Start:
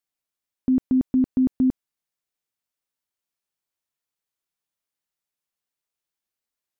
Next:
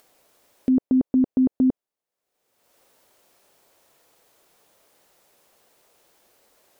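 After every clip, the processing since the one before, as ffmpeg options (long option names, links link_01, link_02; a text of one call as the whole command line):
ffmpeg -i in.wav -af "equalizer=frequency=530:width_type=o:width=1.8:gain=13.5,acompressor=mode=upward:threshold=-33dB:ratio=2.5,volume=-5dB" out.wav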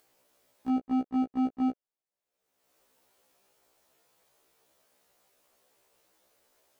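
ffmpeg -i in.wav -af "volume=21dB,asoftclip=hard,volume=-21dB,afftfilt=real='re*1.73*eq(mod(b,3),0)':imag='im*1.73*eq(mod(b,3),0)':win_size=2048:overlap=0.75,volume=-5.5dB" out.wav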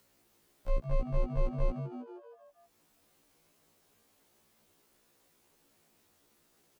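ffmpeg -i in.wav -filter_complex "[0:a]afreqshift=-230,asplit=7[link_01][link_02][link_03][link_04][link_05][link_06][link_07];[link_02]adelay=158,afreqshift=110,volume=-11.5dB[link_08];[link_03]adelay=316,afreqshift=220,volume=-16.7dB[link_09];[link_04]adelay=474,afreqshift=330,volume=-21.9dB[link_10];[link_05]adelay=632,afreqshift=440,volume=-27.1dB[link_11];[link_06]adelay=790,afreqshift=550,volume=-32.3dB[link_12];[link_07]adelay=948,afreqshift=660,volume=-37.5dB[link_13];[link_01][link_08][link_09][link_10][link_11][link_12][link_13]amix=inputs=7:normalize=0" out.wav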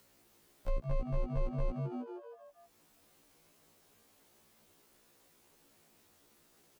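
ffmpeg -i in.wav -af "alimiter=level_in=3dB:limit=-24dB:level=0:latency=1:release=208,volume=-3dB,volume=2.5dB" out.wav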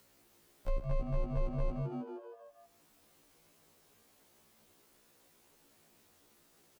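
ffmpeg -i in.wav -filter_complex "[0:a]asplit=2[link_01][link_02];[link_02]adelay=128.3,volume=-14dB,highshelf=frequency=4000:gain=-2.89[link_03];[link_01][link_03]amix=inputs=2:normalize=0" out.wav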